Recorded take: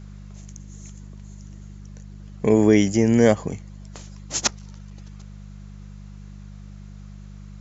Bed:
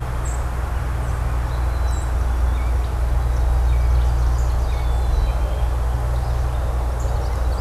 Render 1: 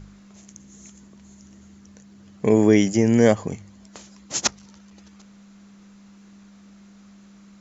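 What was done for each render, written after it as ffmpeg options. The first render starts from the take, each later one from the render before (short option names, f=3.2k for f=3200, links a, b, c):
-af "bandreject=f=50:t=h:w=4,bandreject=f=100:t=h:w=4,bandreject=f=150:t=h:w=4"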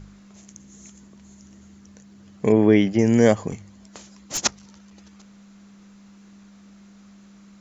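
-filter_complex "[0:a]asettb=1/sr,asplit=3[a][b][c];[a]atrim=end=2.524[d];[b]atrim=start=2.52:end=2.99,asetpts=PTS-STARTPTS,afade=t=in:d=0.004:c=qsin,afade=t=out:st=0.466:d=0.004:c=qsin,lowpass=f=3.8k:w=0.5412,lowpass=f=3.8k:w=1.3066[e];[c]atrim=start=2.986[f];[d][e]acrossfade=d=0.004:c1=hsin:c2=qsin[g];[g][f]acrossfade=d=0.004:c1=qsin:c2=hsin,asettb=1/sr,asplit=3[h][i][j];[h]atrim=end=3.514[k];[i]atrim=start=3.51:end=4.38,asetpts=PTS-STARTPTS,afade=t=in:d=0.004:c=qsin,afade=t=out:st=0.866:d=0.004:c=qsin,aeval=exprs='clip(val(0),-1,0.0631)':c=same[l];[j]atrim=start=4.376[m];[k][l]acrossfade=d=0.004:c1=hsin:c2=qsin[n];[n][m]acrossfade=d=0.004:c1=qsin:c2=hsin"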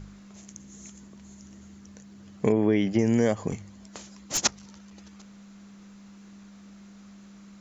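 -af "acompressor=threshold=-18dB:ratio=6"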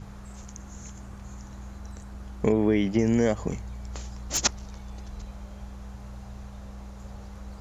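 -filter_complex "[1:a]volume=-21dB[a];[0:a][a]amix=inputs=2:normalize=0"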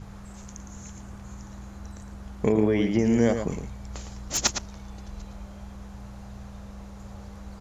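-filter_complex "[0:a]asplit=2[a][b];[b]adelay=110.8,volume=-7dB,highshelf=f=4k:g=-2.49[c];[a][c]amix=inputs=2:normalize=0"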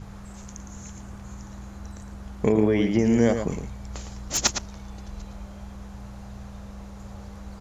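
-af "volume=1.5dB"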